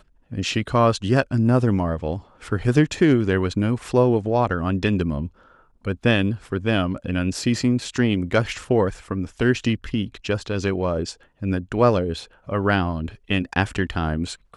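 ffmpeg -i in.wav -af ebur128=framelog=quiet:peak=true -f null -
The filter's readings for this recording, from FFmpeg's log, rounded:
Integrated loudness:
  I:         -22.3 LUFS
  Threshold: -32.5 LUFS
Loudness range:
  LRA:         3.2 LU
  Threshold: -42.5 LUFS
  LRA low:   -23.8 LUFS
  LRA high:  -20.6 LUFS
True peak:
  Peak:       -3.3 dBFS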